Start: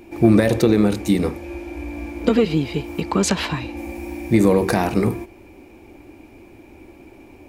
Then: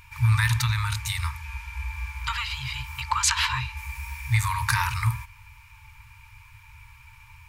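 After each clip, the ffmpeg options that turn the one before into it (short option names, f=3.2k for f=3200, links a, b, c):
-af "afftfilt=real='re*(1-between(b*sr/4096,130,870))':imag='im*(1-between(b*sr/4096,130,870))':win_size=4096:overlap=0.75,volume=2dB"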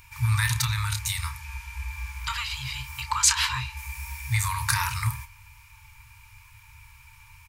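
-filter_complex "[0:a]acrossover=split=4700[a][b];[b]acontrast=89[c];[a][c]amix=inputs=2:normalize=0,asplit=2[d][e];[e]adelay=30,volume=-11dB[f];[d][f]amix=inputs=2:normalize=0,volume=-2.5dB"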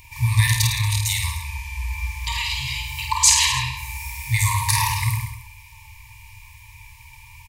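-af "asuperstop=centerf=1400:order=8:qfactor=2.1,aecho=1:1:50|105|165.5|232|305.3:0.631|0.398|0.251|0.158|0.1,volume=4.5dB"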